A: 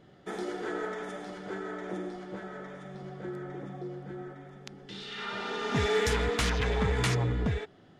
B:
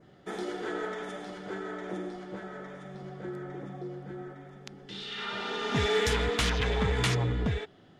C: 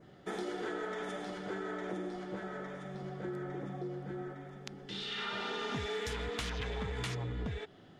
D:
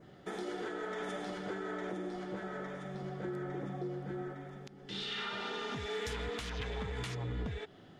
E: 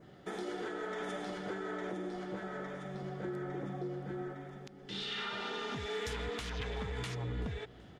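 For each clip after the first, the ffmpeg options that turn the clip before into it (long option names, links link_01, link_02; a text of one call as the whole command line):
ffmpeg -i in.wav -af "adynamicequalizer=threshold=0.00251:dfrequency=3300:dqfactor=2:tfrequency=3300:tqfactor=2:attack=5:release=100:ratio=0.375:range=2:mode=boostabove:tftype=bell" out.wav
ffmpeg -i in.wav -af "acompressor=threshold=-34dB:ratio=12" out.wav
ffmpeg -i in.wav -af "alimiter=level_in=6dB:limit=-24dB:level=0:latency=1:release=299,volume=-6dB,volume=1dB" out.wav
ffmpeg -i in.wav -af "aecho=1:1:381|762|1143:0.0841|0.0362|0.0156" out.wav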